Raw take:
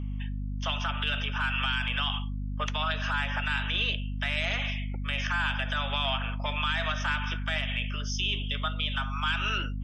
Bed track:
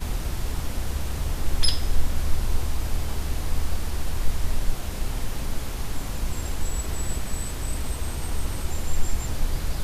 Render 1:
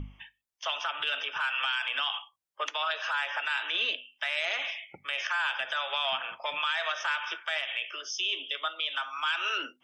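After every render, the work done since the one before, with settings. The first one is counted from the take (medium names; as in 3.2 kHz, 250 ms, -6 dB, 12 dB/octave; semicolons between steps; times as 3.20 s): hum notches 50/100/150/200/250 Hz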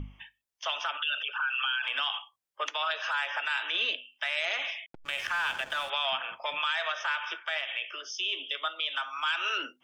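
0.97–1.84 s: resonances exaggerated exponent 2; 4.86–5.90 s: hysteresis with a dead band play -36.5 dBFS; 6.83–8.38 s: distance through air 61 m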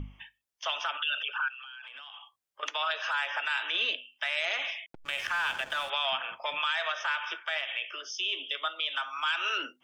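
1.48–2.63 s: compression 12:1, threshold -42 dBFS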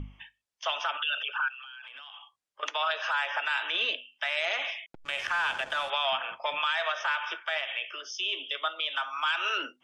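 low-pass 9.1 kHz 12 dB/octave; dynamic bell 680 Hz, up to +4 dB, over -43 dBFS, Q 0.76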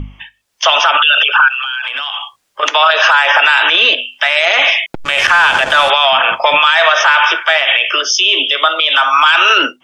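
level rider gain up to 12 dB; loudness maximiser +14 dB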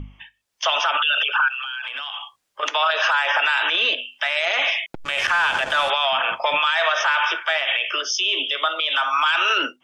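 trim -10 dB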